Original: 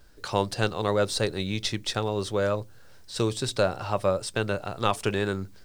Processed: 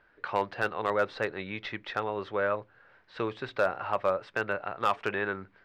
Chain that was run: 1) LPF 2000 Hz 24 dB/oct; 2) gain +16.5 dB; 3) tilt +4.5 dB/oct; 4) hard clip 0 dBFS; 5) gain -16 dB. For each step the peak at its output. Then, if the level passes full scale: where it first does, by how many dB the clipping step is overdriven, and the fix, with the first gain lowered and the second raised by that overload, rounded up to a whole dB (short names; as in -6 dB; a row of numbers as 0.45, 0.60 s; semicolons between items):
-9.0, +7.5, +6.5, 0.0, -16.0 dBFS; step 2, 6.5 dB; step 2 +9.5 dB, step 5 -9 dB